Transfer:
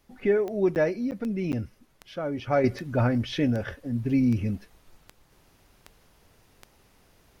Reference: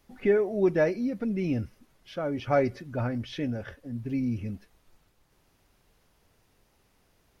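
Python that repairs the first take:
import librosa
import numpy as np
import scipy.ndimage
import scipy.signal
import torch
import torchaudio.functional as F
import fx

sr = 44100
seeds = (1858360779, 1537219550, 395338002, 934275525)

y = fx.fix_declick_ar(x, sr, threshold=10.0)
y = fx.fix_interpolate(y, sr, at_s=(0.75, 1.11, 1.52), length_ms=9.4)
y = fx.fix_level(y, sr, at_s=2.64, step_db=-6.5)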